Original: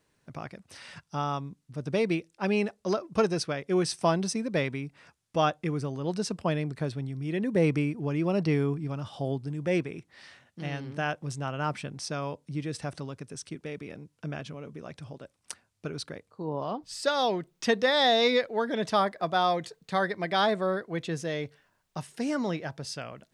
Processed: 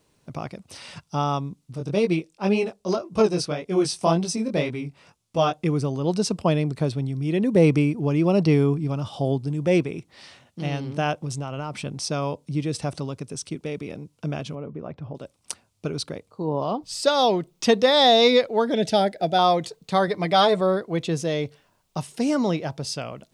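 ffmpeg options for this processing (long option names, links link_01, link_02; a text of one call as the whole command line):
ffmpeg -i in.wav -filter_complex "[0:a]asplit=3[link_01][link_02][link_03];[link_01]afade=type=out:start_time=1.75:duration=0.02[link_04];[link_02]flanger=delay=17:depth=5.8:speed=1.9,afade=type=in:start_time=1.75:duration=0.02,afade=type=out:start_time=5.52:duration=0.02[link_05];[link_03]afade=type=in:start_time=5.52:duration=0.02[link_06];[link_04][link_05][link_06]amix=inputs=3:normalize=0,asettb=1/sr,asplit=3[link_07][link_08][link_09];[link_07]atrim=end=11.244[link_10];[link_08]atrim=start=11.24:end=11.86,asetpts=PTS-STARTPTS,afade=type=in:duration=0.004:curve=qsin,afade=type=out:start_time=0.616:duration=0.004:curve=qsin,acompressor=threshold=-32dB:ratio=6:attack=3.2:release=140:knee=1:detection=peak[link_11];[link_09]atrim=start=11.856[link_12];[link_10][link_11]acrossfade=duration=0.004:curve1=hsin:curve2=qsin[link_13];[link_13][link_12]acrossfade=duration=0.004:curve1=qsin:curve2=hsin,asettb=1/sr,asplit=3[link_14][link_15][link_16];[link_14]atrim=end=14.554[link_17];[link_15]atrim=start=14.55:end=15.15,asetpts=PTS-STARTPTS,afade=type=in:duration=0.004:curve=qsin,afade=type=out:start_time=0.596:duration=0.004:curve=qsin,lowpass=1600[link_18];[link_16]atrim=start=15.146[link_19];[link_17][link_18]acrossfade=duration=0.004:curve1=hsin:curve2=qsin[link_20];[link_20][link_19]acrossfade=duration=0.004:curve1=qsin:curve2=hsin,asettb=1/sr,asplit=3[link_21][link_22][link_23];[link_21]atrim=end=18.744[link_24];[link_22]atrim=start=18.74:end=19.39,asetpts=PTS-STARTPTS,afade=type=in:duration=0.004:curve=qsin,afade=type=out:start_time=0.646:duration=0.004:curve=qsin,asuperstop=centerf=1100:order=4:qfactor=1.9[link_25];[link_23]atrim=start=19.386[link_26];[link_24][link_25]acrossfade=duration=0.004:curve1=hsin:curve2=qsin[link_27];[link_27][link_26]acrossfade=duration=0.004:curve1=qsin:curve2=hsin,asettb=1/sr,asplit=3[link_28][link_29][link_30];[link_28]atrim=end=20.074[link_31];[link_29]atrim=start=20.07:end=20.61,asetpts=PTS-STARTPTS,afade=type=in:duration=0.004:curve=qsin,afade=type=out:start_time=0.536:duration=0.004:curve=qsin,aecho=1:1:6.7:0.51,atrim=end_sample=23814[link_32];[link_30]atrim=start=20.606[link_33];[link_31][link_32]acrossfade=duration=0.004:curve1=hsin:curve2=qsin[link_34];[link_34][link_33]acrossfade=duration=0.004:curve1=qsin:curve2=hsin,equalizer=frequency=1700:width=2.3:gain=-9,volume=7.5dB" out.wav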